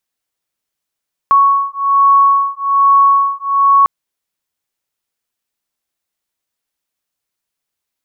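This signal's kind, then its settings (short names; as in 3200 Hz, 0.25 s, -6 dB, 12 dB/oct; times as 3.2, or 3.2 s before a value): beating tones 1110 Hz, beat 1.2 Hz, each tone -11 dBFS 2.55 s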